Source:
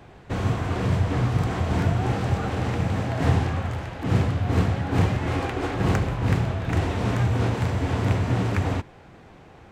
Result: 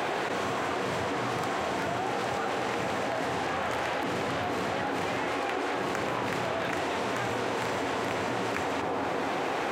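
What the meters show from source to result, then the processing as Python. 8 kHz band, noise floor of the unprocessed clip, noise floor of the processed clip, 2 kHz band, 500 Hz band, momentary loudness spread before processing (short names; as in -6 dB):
+1.5 dB, -48 dBFS, -31 dBFS, +2.0 dB, 0.0 dB, 4 LU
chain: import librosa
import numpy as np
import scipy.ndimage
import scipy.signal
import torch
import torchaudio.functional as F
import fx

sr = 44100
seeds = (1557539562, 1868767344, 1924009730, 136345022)

y = scipy.signal.sosfilt(scipy.signal.butter(2, 400.0, 'highpass', fs=sr, output='sos'), x)
y = fx.echo_bbd(y, sr, ms=240, stages=2048, feedback_pct=50, wet_db=-16)
y = fx.env_flatten(y, sr, amount_pct=100)
y = y * 10.0 ** (-4.5 / 20.0)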